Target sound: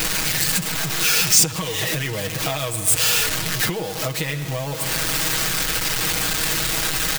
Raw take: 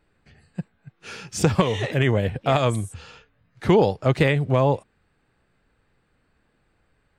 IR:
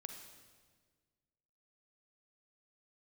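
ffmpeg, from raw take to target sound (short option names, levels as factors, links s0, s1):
-filter_complex "[0:a]aeval=exprs='val(0)+0.5*0.0794*sgn(val(0))':c=same,aecho=1:1:6.3:0.75,asplit=2[s0][s1];[1:a]atrim=start_sample=2205,asetrate=34839,aresample=44100,lowpass=7800[s2];[s1][s2]afir=irnorm=-1:irlink=0,volume=0.944[s3];[s0][s3]amix=inputs=2:normalize=0,acompressor=threshold=0.126:ratio=16,crystalizer=i=6.5:c=0,volume=0.501"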